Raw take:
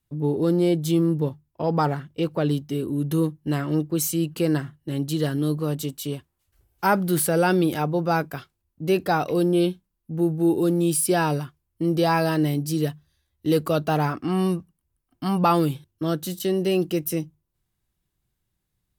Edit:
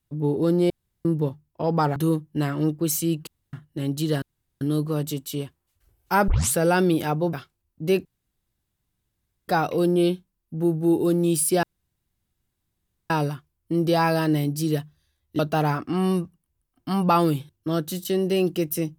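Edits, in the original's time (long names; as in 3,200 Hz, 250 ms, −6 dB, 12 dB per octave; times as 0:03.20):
0:00.70–0:01.05: fill with room tone
0:01.96–0:03.07: remove
0:04.38–0:04.64: fill with room tone
0:05.33: splice in room tone 0.39 s
0:07.00: tape start 0.26 s
0:08.05–0:08.33: remove
0:09.05: splice in room tone 1.43 s
0:11.20: splice in room tone 1.47 s
0:13.49–0:13.74: remove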